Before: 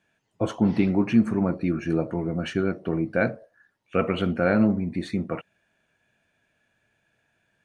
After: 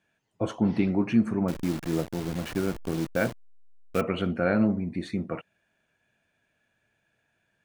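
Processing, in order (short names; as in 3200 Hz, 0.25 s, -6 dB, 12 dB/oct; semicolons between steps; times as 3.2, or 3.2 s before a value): 1.48–4.01 level-crossing sampler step -29 dBFS; gain -3 dB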